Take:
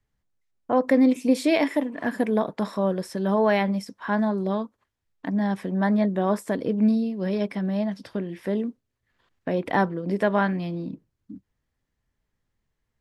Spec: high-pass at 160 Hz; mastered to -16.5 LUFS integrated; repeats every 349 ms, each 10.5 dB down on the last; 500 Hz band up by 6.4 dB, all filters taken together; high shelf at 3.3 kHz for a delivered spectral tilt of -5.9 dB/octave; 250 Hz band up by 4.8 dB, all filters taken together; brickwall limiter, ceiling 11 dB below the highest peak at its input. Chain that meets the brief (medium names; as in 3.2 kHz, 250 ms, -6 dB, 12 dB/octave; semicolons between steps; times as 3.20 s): high-pass 160 Hz; peaking EQ 250 Hz +5.5 dB; peaking EQ 500 Hz +7 dB; treble shelf 3.3 kHz -8.5 dB; peak limiter -12.5 dBFS; feedback delay 349 ms, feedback 30%, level -10.5 dB; trim +6 dB